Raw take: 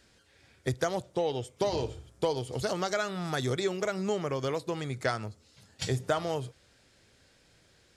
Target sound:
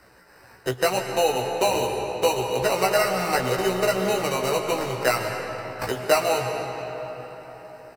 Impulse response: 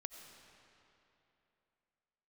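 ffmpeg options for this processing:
-filter_complex "[0:a]equalizer=frequency=900:width=0.46:gain=14.5,asplit=2[link_01][link_02];[link_02]acompressor=threshold=-31dB:ratio=6,volume=2dB[link_03];[link_01][link_03]amix=inputs=2:normalize=0,acrusher=samples=13:mix=1:aa=0.000001,acrossover=split=240|1200[link_04][link_05][link_06];[link_04]volume=29.5dB,asoftclip=hard,volume=-29.5dB[link_07];[link_07][link_05][link_06]amix=inputs=3:normalize=0,flanger=delay=0.8:depth=8.9:regen=-52:speed=0.87:shape=triangular,asplit=2[link_08][link_09];[link_09]adelay=16,volume=-3.5dB[link_10];[link_08][link_10]amix=inputs=2:normalize=0[link_11];[1:a]atrim=start_sample=2205,asetrate=29106,aresample=44100[link_12];[link_11][link_12]afir=irnorm=-1:irlink=0"

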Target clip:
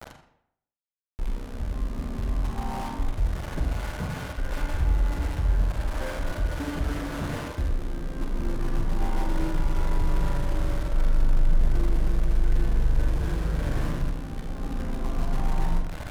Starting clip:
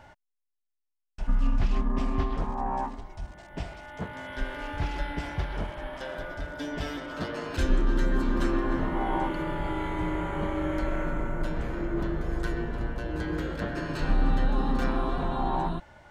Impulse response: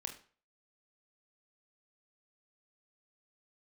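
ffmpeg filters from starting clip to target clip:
-filter_complex "[0:a]aeval=exprs='val(0)+0.5*0.01*sgn(val(0))':channel_layout=same,lowpass=1800,lowshelf=frequency=250:gain=10,areverse,acompressor=threshold=-23dB:ratio=4,areverse,alimiter=limit=-24dB:level=0:latency=1:release=212,acrossover=split=110|830[link_01][link_02][link_03];[link_01]dynaudnorm=framelen=700:gausssize=3:maxgain=6dB[link_04];[link_04][link_02][link_03]amix=inputs=3:normalize=0,aeval=exprs='val(0)*gte(abs(val(0)),0.0251)':channel_layout=same[link_05];[1:a]atrim=start_sample=2205,asetrate=25578,aresample=44100[link_06];[link_05][link_06]afir=irnorm=-1:irlink=0"

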